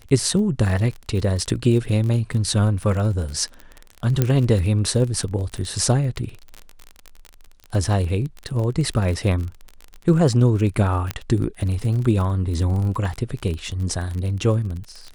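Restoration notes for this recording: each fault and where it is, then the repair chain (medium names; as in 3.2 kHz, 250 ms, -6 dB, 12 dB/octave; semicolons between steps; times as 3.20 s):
crackle 32 per s -27 dBFS
4.22 s: pop -5 dBFS
11.11 s: pop -9 dBFS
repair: de-click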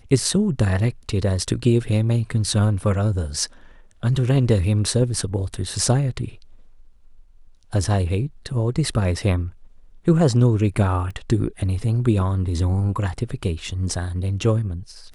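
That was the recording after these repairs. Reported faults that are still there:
11.11 s: pop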